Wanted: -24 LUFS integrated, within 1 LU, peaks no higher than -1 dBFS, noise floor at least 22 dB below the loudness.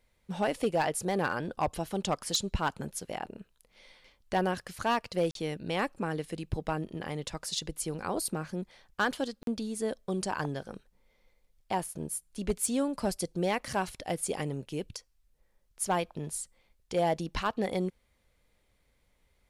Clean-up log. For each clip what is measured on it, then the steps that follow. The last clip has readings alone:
clipped 0.3%; flat tops at -20.5 dBFS; dropouts 2; longest dropout 42 ms; loudness -33.0 LUFS; peak -20.5 dBFS; loudness target -24.0 LUFS
-> clip repair -20.5 dBFS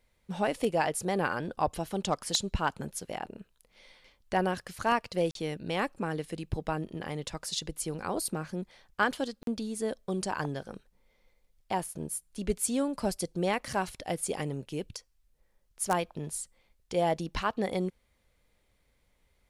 clipped 0.0%; dropouts 2; longest dropout 42 ms
-> interpolate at 5.31/9.43, 42 ms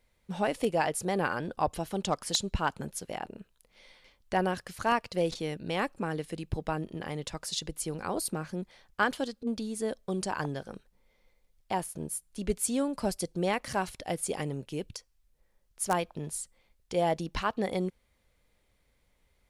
dropouts 0; loudness -32.5 LUFS; peak -11.5 dBFS; loudness target -24.0 LUFS
-> gain +8.5 dB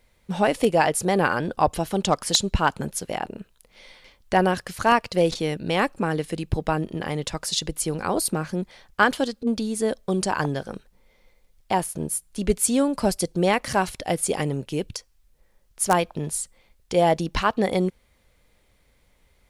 loudness -24.0 LUFS; peak -3.0 dBFS; noise floor -63 dBFS

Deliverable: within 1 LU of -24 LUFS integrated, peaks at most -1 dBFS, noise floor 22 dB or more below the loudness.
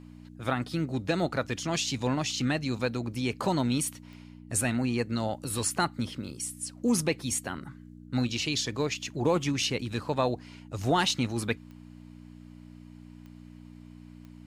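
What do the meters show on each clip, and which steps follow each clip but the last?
clicks 5; hum 60 Hz; harmonics up to 300 Hz; hum level -48 dBFS; loudness -30.0 LUFS; peak -14.5 dBFS; loudness target -24.0 LUFS
-> de-click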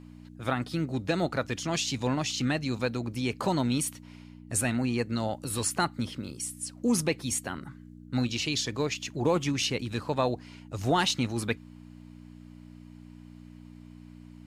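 clicks 0; hum 60 Hz; harmonics up to 300 Hz; hum level -48 dBFS
-> de-hum 60 Hz, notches 5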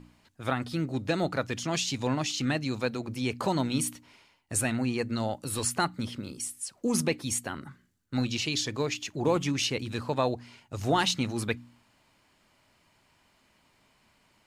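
hum none; loudness -30.0 LUFS; peak -14.0 dBFS; loudness target -24.0 LUFS
-> gain +6 dB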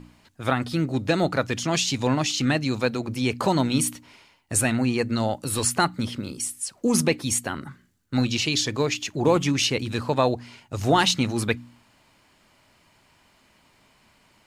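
loudness -24.0 LUFS; peak -8.0 dBFS; noise floor -61 dBFS

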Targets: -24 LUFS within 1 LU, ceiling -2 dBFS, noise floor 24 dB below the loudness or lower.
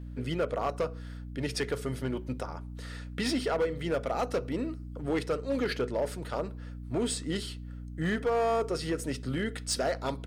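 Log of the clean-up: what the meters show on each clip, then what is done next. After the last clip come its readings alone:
clipped 1.8%; flat tops at -23.0 dBFS; hum 60 Hz; harmonics up to 300 Hz; hum level -39 dBFS; loudness -32.5 LUFS; peak -23.0 dBFS; loudness target -24.0 LUFS
-> clip repair -23 dBFS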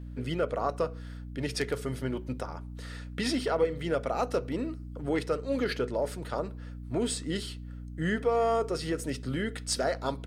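clipped 0.0%; hum 60 Hz; harmonics up to 300 Hz; hum level -38 dBFS
-> notches 60/120/180/240/300 Hz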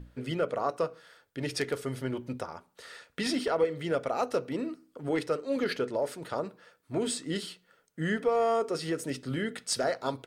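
hum none; loudness -32.0 LUFS; peak -15.5 dBFS; loudness target -24.0 LUFS
-> gain +8 dB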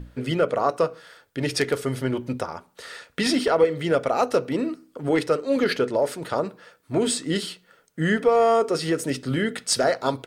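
loudness -24.0 LUFS; peak -7.5 dBFS; noise floor -62 dBFS

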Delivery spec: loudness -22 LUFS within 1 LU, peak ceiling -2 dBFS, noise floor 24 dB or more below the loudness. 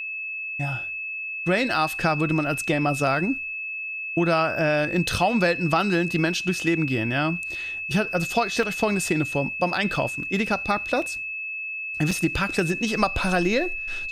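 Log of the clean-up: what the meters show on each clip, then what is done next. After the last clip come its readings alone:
dropouts 5; longest dropout 3.2 ms; steady tone 2600 Hz; tone level -29 dBFS; loudness -24.0 LUFS; peak -7.5 dBFS; loudness target -22.0 LUFS
-> interpolate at 8.63/9.96/10.47/11.02/12.11, 3.2 ms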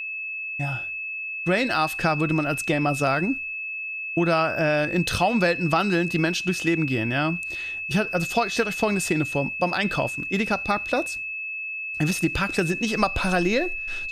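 dropouts 0; steady tone 2600 Hz; tone level -29 dBFS
-> notch 2600 Hz, Q 30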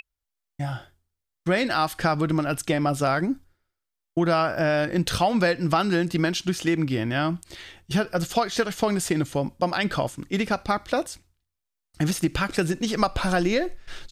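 steady tone none; loudness -25.0 LUFS; peak -7.0 dBFS; loudness target -22.0 LUFS
-> gain +3 dB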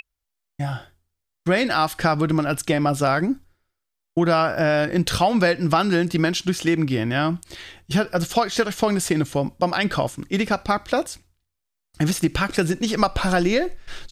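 loudness -22.0 LUFS; peak -4.0 dBFS; noise floor -80 dBFS

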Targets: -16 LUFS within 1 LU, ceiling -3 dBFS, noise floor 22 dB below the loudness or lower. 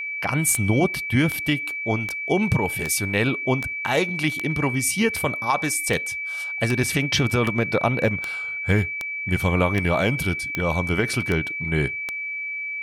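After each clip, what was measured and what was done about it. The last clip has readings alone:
clicks 16; steady tone 2300 Hz; tone level -27 dBFS; loudness -22.5 LUFS; peak -7.5 dBFS; loudness target -16.0 LUFS
-> de-click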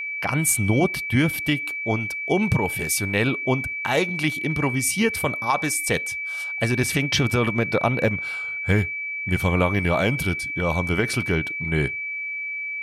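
clicks 0; steady tone 2300 Hz; tone level -27 dBFS
-> notch 2300 Hz, Q 30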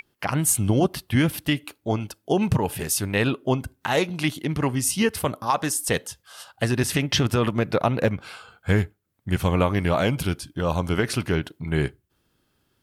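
steady tone none; loudness -24.0 LUFS; peak -8.5 dBFS; loudness target -16.0 LUFS
-> gain +8 dB; limiter -3 dBFS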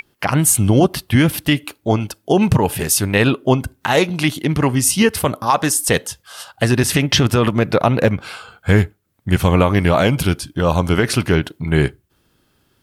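loudness -16.5 LUFS; peak -3.0 dBFS; noise floor -63 dBFS

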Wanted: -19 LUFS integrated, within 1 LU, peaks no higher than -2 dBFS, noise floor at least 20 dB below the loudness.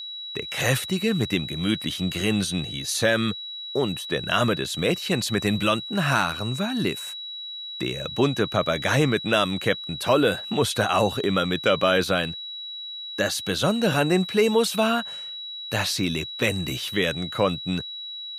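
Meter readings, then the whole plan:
steady tone 3900 Hz; tone level -33 dBFS; loudness -24.0 LUFS; peak -6.0 dBFS; loudness target -19.0 LUFS
-> notch 3900 Hz, Q 30; gain +5 dB; limiter -2 dBFS

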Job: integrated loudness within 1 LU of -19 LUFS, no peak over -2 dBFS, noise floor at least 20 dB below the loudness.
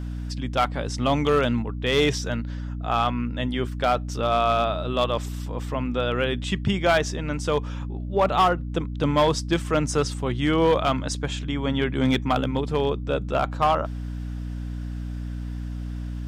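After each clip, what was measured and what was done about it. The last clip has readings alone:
clipped 0.6%; flat tops at -13.0 dBFS; hum 60 Hz; harmonics up to 300 Hz; hum level -28 dBFS; loudness -25.0 LUFS; peak -13.0 dBFS; loudness target -19.0 LUFS
-> clip repair -13 dBFS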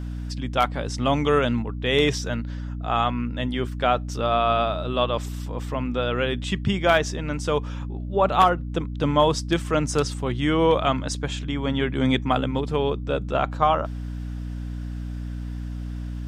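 clipped 0.0%; hum 60 Hz; harmonics up to 300 Hz; hum level -28 dBFS
-> de-hum 60 Hz, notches 5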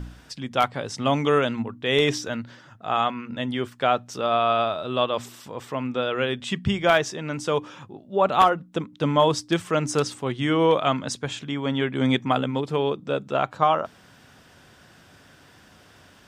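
hum none; loudness -24.0 LUFS; peak -3.5 dBFS; loudness target -19.0 LUFS
-> gain +5 dB; limiter -2 dBFS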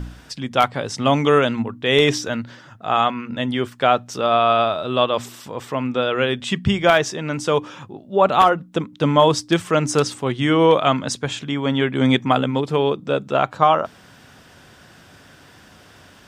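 loudness -19.5 LUFS; peak -2.0 dBFS; noise floor -48 dBFS

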